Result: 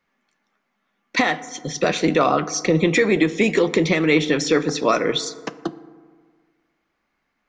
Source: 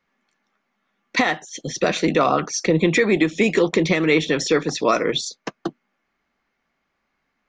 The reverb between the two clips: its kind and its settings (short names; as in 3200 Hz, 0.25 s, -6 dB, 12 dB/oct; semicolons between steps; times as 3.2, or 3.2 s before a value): FDN reverb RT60 1.7 s, low-frequency decay 1×, high-frequency decay 0.4×, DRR 14 dB